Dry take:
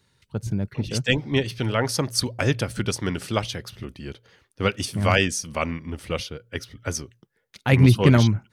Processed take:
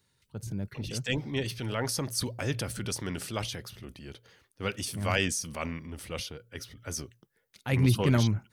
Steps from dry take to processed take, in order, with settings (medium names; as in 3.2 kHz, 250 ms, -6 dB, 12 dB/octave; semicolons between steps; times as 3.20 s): treble shelf 8 kHz +9.5 dB; transient shaper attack -4 dB, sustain +5 dB; trim -8 dB